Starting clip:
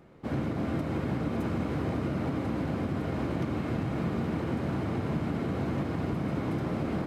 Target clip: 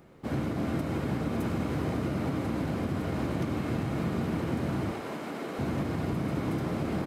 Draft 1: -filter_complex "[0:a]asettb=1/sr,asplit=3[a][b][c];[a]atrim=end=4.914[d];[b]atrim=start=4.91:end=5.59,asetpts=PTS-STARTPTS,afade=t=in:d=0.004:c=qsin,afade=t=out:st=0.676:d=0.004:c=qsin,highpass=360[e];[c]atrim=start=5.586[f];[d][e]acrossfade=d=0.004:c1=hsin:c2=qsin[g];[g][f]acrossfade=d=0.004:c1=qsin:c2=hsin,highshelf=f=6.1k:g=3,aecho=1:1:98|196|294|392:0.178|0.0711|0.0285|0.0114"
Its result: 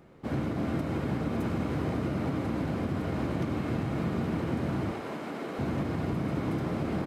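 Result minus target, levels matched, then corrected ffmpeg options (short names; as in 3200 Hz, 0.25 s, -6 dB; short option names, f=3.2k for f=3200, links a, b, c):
8000 Hz band -4.0 dB
-filter_complex "[0:a]asettb=1/sr,asplit=3[a][b][c];[a]atrim=end=4.914[d];[b]atrim=start=4.91:end=5.59,asetpts=PTS-STARTPTS,afade=t=in:d=0.004:c=qsin,afade=t=out:st=0.676:d=0.004:c=qsin,highpass=360[e];[c]atrim=start=5.586[f];[d][e]acrossfade=d=0.004:c1=hsin:c2=qsin[g];[g][f]acrossfade=d=0.004:c1=qsin:c2=hsin,highshelf=f=6.1k:g=9.5,aecho=1:1:98|196|294|392:0.178|0.0711|0.0285|0.0114"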